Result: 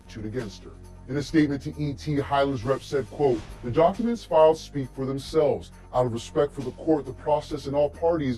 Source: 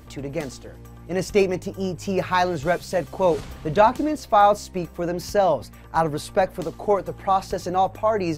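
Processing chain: frequency-domain pitch shifter -4.5 st; trim -1 dB

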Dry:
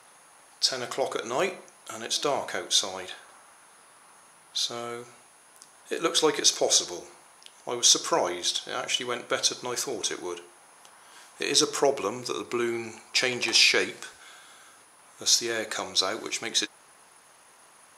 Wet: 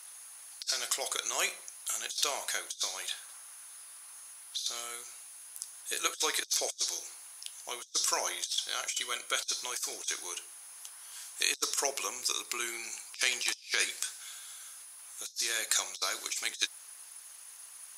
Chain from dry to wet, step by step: differentiator; harmonic-percussive split percussive +3 dB; compressor with a negative ratio -34 dBFS, ratio -0.5; 8.87–9.34 s: comb of notches 860 Hz; trim +1.5 dB

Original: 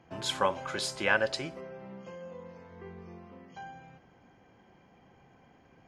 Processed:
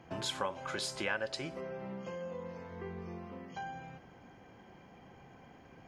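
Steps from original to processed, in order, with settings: compression 2.5:1, threshold -42 dBFS, peak gain reduction 14 dB; trim +4 dB

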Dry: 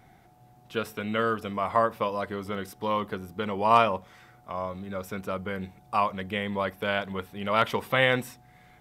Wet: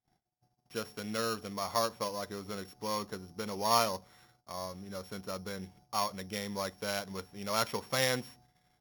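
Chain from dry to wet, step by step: sorted samples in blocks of 8 samples; gate -53 dBFS, range -30 dB; trim -7.5 dB

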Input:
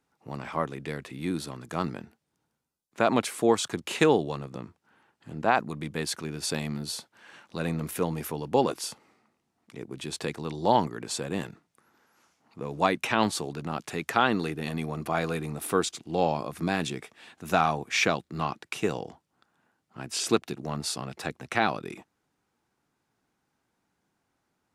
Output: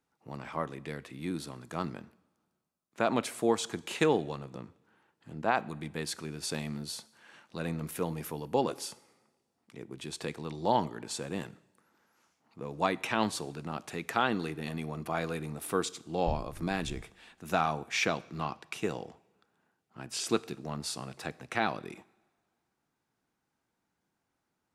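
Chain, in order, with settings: 16.26–17.01 s: wind noise 89 Hz -26 dBFS; two-slope reverb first 0.77 s, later 2 s, from -17 dB, DRR 17 dB; trim -5 dB

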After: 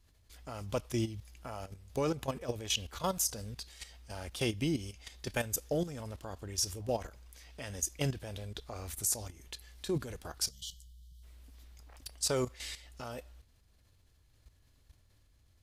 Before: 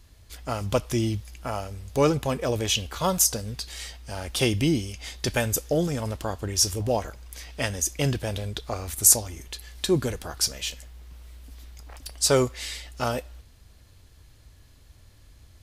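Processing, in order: time-frequency box 10.50–11.23 s, 200–2900 Hz -28 dB; level held to a coarse grid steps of 12 dB; trim -6 dB

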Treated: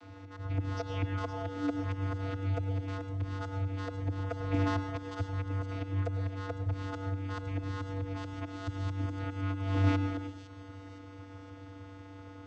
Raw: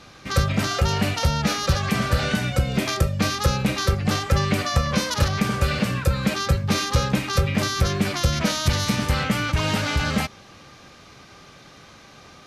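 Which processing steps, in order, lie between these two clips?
painted sound fall, 0.76–1.72 s, 210–5500 Hz -28 dBFS; treble shelf 4.6 kHz -8.5 dB; slow attack 408 ms; vocoder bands 16, square 96.6 Hz; feedback echo behind a high-pass 513 ms, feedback 50%, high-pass 4.9 kHz, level -7 dB; reverberation RT60 0.55 s, pre-delay 95 ms, DRR 9 dB

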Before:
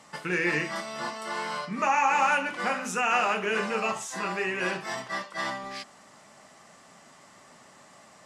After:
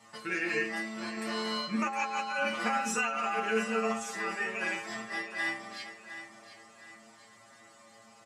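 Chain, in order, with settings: high-pass 59 Hz; inharmonic resonator 110 Hz, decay 0.4 s, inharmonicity 0.002; 1.17–3.40 s: compressor with a negative ratio -39 dBFS, ratio -1; feedback delay 712 ms, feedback 35%, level -12 dB; trim +7.5 dB

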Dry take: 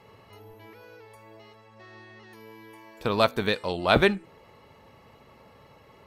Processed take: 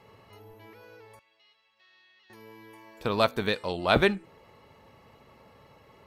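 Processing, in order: 1.19–2.30 s: band-pass filter 3.4 kHz, Q 2; trim -2 dB

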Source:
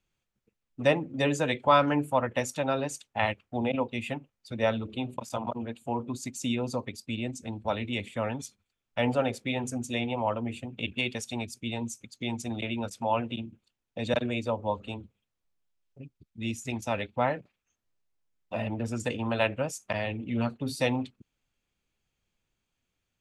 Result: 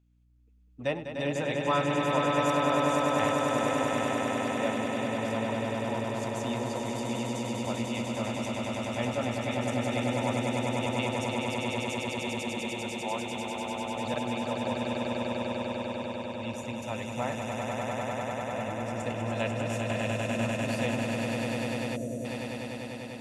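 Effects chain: hum 60 Hz, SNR 28 dB; echo with a slow build-up 99 ms, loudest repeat 8, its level -4.5 dB; time-frequency box 21.96–22.25 s, 720–5700 Hz -18 dB; trim -7 dB

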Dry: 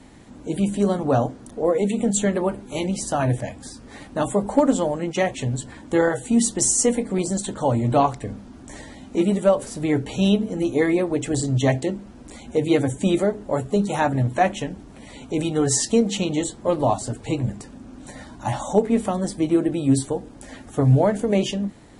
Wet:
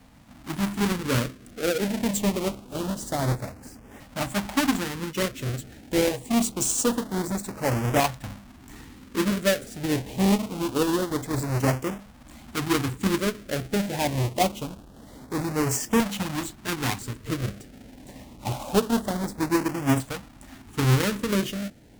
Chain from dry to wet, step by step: square wave that keeps the level; LFO notch saw up 0.25 Hz 350–4400 Hz; Chebyshev shaper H 7 -30 dB, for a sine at -3 dBFS; trim -7 dB

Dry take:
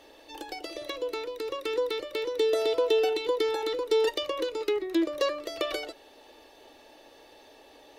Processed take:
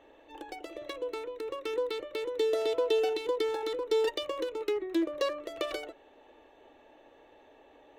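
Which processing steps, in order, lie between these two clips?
local Wiener filter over 9 samples; trim -3 dB

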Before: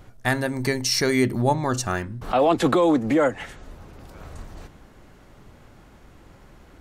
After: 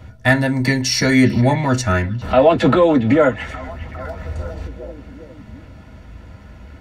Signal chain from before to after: 2.35–3.37 s: treble shelf 7.6 kHz -11 dB; repeats whose band climbs or falls 406 ms, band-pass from 2.6 kHz, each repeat -0.7 oct, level -11.5 dB; reverberation RT60 0.10 s, pre-delay 3 ms, DRR 3 dB; trim -2 dB

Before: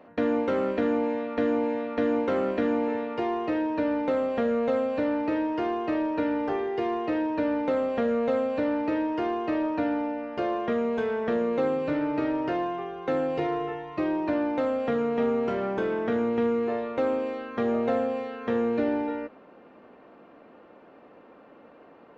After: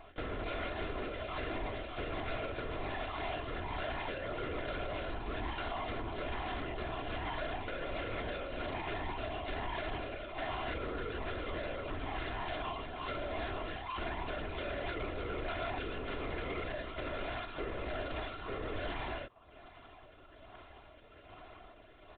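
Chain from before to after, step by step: median filter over 25 samples; reverb removal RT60 0.57 s; rotary cabinet horn 1.2 Hz; overdrive pedal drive 19 dB, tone 1.3 kHz, clips at -22.5 dBFS; differentiator; LPC vocoder at 8 kHz whisper; peak limiter -44 dBFS, peak gain reduction 7 dB; comb 2.9 ms, depth 50%; loudspeaker Doppler distortion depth 0.13 ms; trim +14 dB

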